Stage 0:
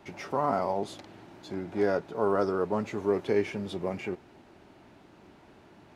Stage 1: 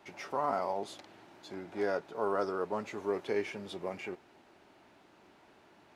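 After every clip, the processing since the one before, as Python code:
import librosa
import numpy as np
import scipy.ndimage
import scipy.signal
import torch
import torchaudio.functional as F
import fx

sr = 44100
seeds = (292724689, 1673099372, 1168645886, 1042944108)

y = fx.low_shelf(x, sr, hz=280.0, db=-12.0)
y = F.gain(torch.from_numpy(y), -2.5).numpy()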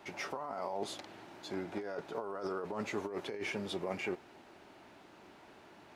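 y = fx.over_compress(x, sr, threshold_db=-38.0, ratio=-1.0)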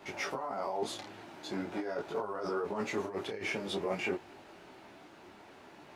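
y = fx.detune_double(x, sr, cents=16)
y = F.gain(torch.from_numpy(y), 7.0).numpy()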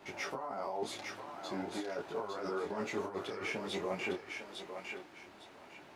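y = fx.echo_thinned(x, sr, ms=855, feedback_pct=27, hz=710.0, wet_db=-4)
y = F.gain(torch.from_numpy(y), -3.0).numpy()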